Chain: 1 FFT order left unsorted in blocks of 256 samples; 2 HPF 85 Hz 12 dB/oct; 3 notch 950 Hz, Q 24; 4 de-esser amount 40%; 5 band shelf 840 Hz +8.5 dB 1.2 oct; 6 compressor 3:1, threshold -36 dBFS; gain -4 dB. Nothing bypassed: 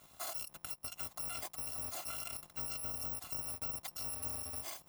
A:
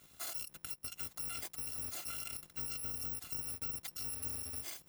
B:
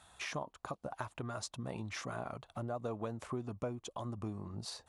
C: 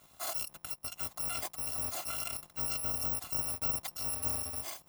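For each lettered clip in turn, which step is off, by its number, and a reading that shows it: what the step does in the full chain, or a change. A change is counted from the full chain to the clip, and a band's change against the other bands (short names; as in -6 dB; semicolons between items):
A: 5, 1 kHz band -5.5 dB; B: 1, 8 kHz band -17.0 dB; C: 6, mean gain reduction 4.5 dB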